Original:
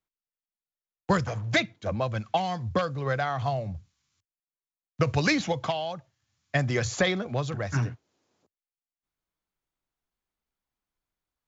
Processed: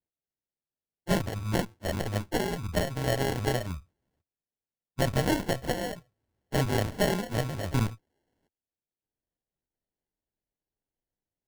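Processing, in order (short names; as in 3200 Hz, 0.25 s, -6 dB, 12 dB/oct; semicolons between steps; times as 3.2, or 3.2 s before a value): inharmonic rescaling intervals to 111%; added harmonics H 6 -12 dB, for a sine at -14 dBFS; sample-and-hold 36×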